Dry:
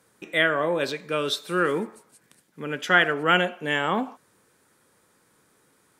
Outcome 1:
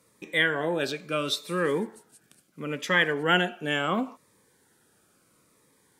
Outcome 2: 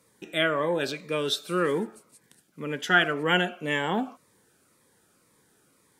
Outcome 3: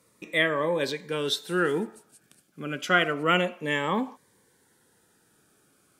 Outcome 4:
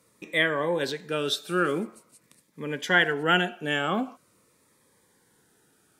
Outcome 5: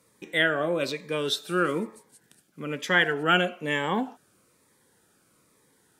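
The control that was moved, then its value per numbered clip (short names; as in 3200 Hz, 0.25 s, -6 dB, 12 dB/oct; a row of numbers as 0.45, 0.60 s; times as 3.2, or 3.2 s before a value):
cascading phaser, rate: 0.73, 1.9, 0.3, 0.45, 1.1 Hz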